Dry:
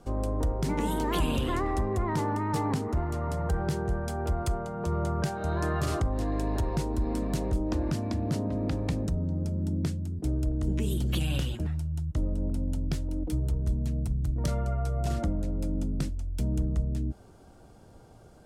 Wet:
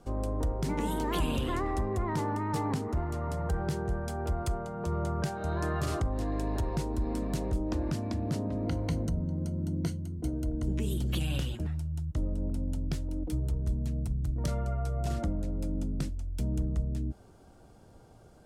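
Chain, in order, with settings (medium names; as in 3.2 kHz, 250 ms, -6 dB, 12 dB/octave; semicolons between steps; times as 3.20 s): 8.65–10.63 s: rippled EQ curve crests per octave 1.9, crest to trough 10 dB; trim -2.5 dB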